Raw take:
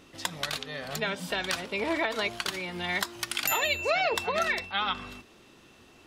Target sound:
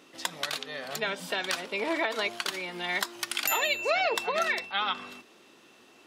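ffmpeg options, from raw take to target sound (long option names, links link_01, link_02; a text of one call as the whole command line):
ffmpeg -i in.wav -af "highpass=250" out.wav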